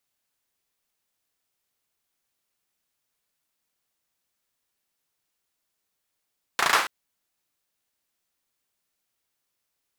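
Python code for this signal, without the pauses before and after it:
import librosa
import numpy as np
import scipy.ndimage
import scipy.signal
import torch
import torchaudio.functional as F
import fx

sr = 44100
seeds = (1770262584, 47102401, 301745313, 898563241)

y = fx.drum_clap(sr, seeds[0], length_s=0.28, bursts=5, spacing_ms=35, hz=1200.0, decay_s=0.5)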